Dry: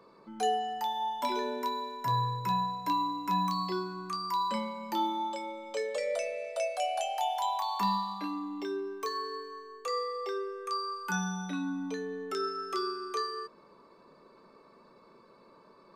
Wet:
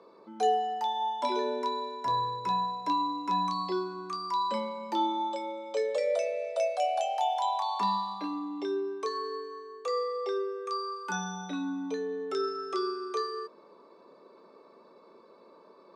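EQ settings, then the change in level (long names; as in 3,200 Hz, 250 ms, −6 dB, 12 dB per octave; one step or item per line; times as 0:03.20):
loudspeaker in its box 400–9,600 Hz, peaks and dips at 2,400 Hz +3 dB, 3,700 Hz +8 dB, 5,600 Hz +5 dB
tilt shelving filter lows +9.5 dB, about 1,100 Hz
high-shelf EQ 4,500 Hz +5.5 dB
0.0 dB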